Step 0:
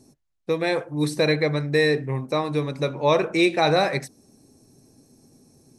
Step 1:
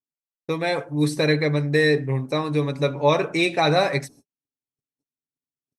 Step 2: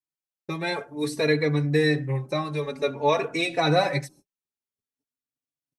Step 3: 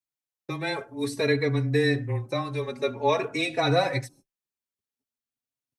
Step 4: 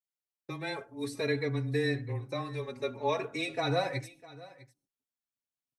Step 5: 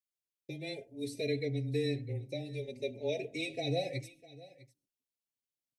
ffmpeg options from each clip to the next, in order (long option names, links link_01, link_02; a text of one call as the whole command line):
ffmpeg -i in.wav -af "aecho=1:1:7.1:0.46,agate=range=-50dB:threshold=-46dB:ratio=16:detection=peak" out.wav
ffmpeg -i in.wav -filter_complex "[0:a]asplit=2[link_01][link_02];[link_02]adelay=3.5,afreqshift=0.51[link_03];[link_01][link_03]amix=inputs=2:normalize=1" out.wav
ffmpeg -i in.wav -af "afreqshift=-15,volume=-1.5dB" out.wav
ffmpeg -i in.wav -af "aecho=1:1:652:0.106,volume=-7dB" out.wav
ffmpeg -i in.wav -af "asuperstop=centerf=1200:order=8:qfactor=0.82,volume=-2.5dB" out.wav